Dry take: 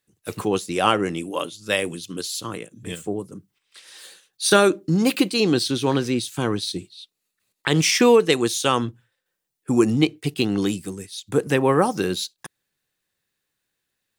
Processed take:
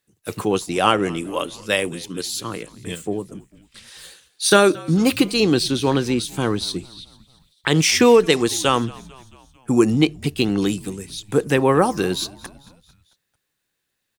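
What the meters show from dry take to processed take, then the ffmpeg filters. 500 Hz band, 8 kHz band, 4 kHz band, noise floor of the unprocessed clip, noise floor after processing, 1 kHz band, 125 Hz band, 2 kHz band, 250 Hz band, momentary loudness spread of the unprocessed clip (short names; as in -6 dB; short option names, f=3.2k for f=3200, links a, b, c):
+2.0 dB, +2.0 dB, +2.0 dB, -79 dBFS, -76 dBFS, +2.0 dB, +2.0 dB, +2.0 dB, +2.0 dB, 15 LU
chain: -filter_complex "[0:a]asplit=5[a][b][c][d][e];[b]adelay=223,afreqshift=-65,volume=-22dB[f];[c]adelay=446,afreqshift=-130,volume=-26.7dB[g];[d]adelay=669,afreqshift=-195,volume=-31.5dB[h];[e]adelay=892,afreqshift=-260,volume=-36.2dB[i];[a][f][g][h][i]amix=inputs=5:normalize=0,volume=2dB"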